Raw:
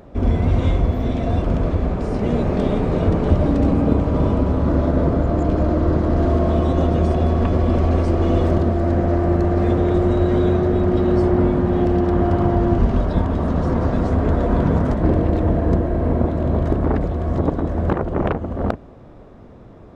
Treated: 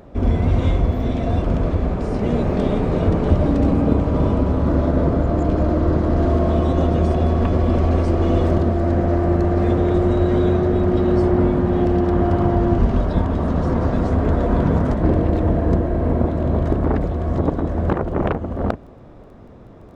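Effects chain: crackle 11 per s -43 dBFS

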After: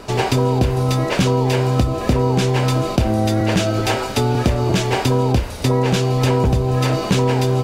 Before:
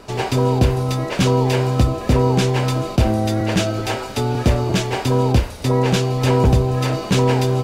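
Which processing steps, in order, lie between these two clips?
compression, threshold -18 dBFS, peak gain reduction 8 dB; trim +5 dB

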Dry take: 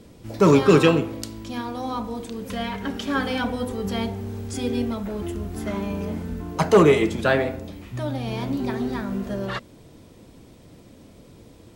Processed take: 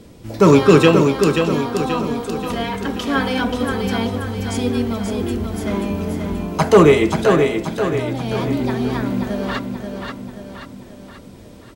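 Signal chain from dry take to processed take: 7.23–8.30 s: compression 2:1, threshold -27 dBFS, peak gain reduction 7 dB; feedback delay 532 ms, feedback 50%, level -5.5 dB; trim +4.5 dB

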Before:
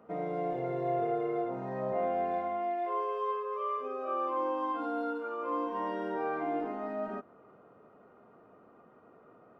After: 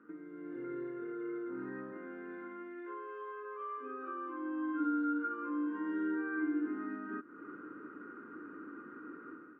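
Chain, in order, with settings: compression 5:1, threshold -48 dBFS, peak gain reduction 18 dB; two resonant band-passes 680 Hz, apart 2.3 oct; level rider gain up to 11.5 dB; trim +9.5 dB

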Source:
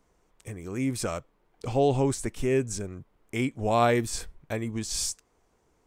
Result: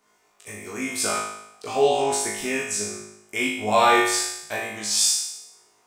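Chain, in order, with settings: high-pass 860 Hz 6 dB/octave; flutter echo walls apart 3.3 m, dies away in 0.81 s; on a send at -5.5 dB: reverberation, pre-delay 3 ms; on the sum: trim +5 dB

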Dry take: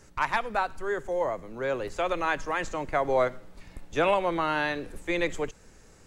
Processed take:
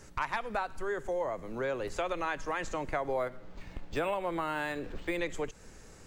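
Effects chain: compression 3:1, threshold -34 dBFS, peak gain reduction 11 dB; 3.08–5.19 s: decimation joined by straight lines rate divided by 4×; trim +2 dB

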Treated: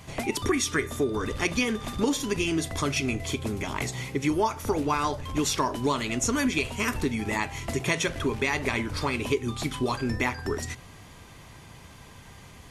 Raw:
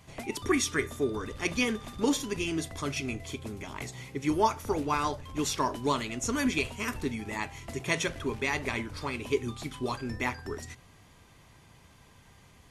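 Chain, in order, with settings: compression 3:1, threshold -33 dBFS, peak gain reduction 10.5 dB; trim +9 dB

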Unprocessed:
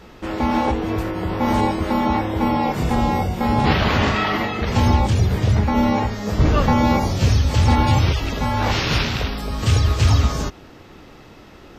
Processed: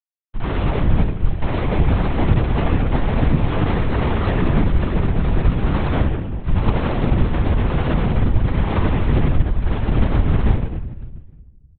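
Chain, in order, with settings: 5.99–6.69 s: high-pass 380 Hz 12 dB/octave; comb 3.9 ms, depth 53%; flange 1 Hz, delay 9.8 ms, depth 6.3 ms, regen -48%; saturation -4.5 dBFS, distortion -33 dB; small resonant body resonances 950/1800 Hz, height 8 dB, ringing for 40 ms; Schmitt trigger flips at -19 dBFS; distance through air 75 m; feedback delay 184 ms, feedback 51%, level -18 dB; simulated room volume 650 m³, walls mixed, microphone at 7.9 m; LPC vocoder at 8 kHz whisper; trim -12.5 dB

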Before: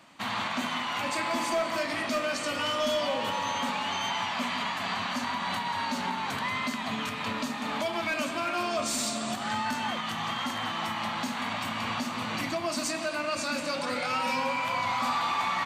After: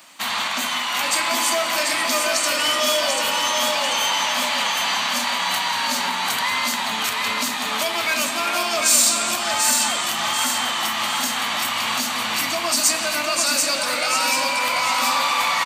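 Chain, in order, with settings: RIAA curve recording; feedback delay 739 ms, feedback 44%, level -4 dB; trim +5.5 dB

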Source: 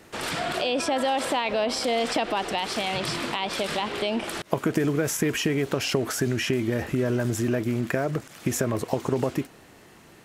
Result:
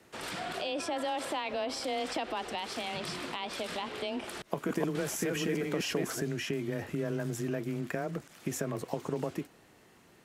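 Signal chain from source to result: 4.21–6.21 s: chunks repeated in reverse 474 ms, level -2 dB; frequency shift +17 Hz; trim -9 dB

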